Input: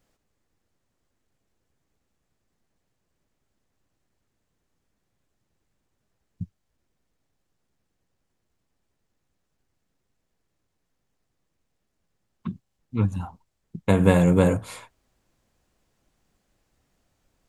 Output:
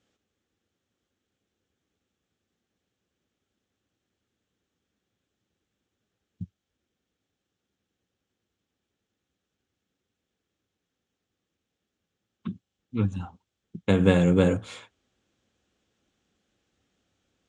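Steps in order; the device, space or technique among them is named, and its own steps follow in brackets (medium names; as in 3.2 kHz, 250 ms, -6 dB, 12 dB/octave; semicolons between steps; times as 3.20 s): car door speaker (cabinet simulation 90–7000 Hz, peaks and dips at 140 Hz -9 dB, 650 Hz -6 dB, 980 Hz -9 dB, 2 kHz -3 dB, 3.3 kHz +5 dB, 4.7 kHz -5 dB)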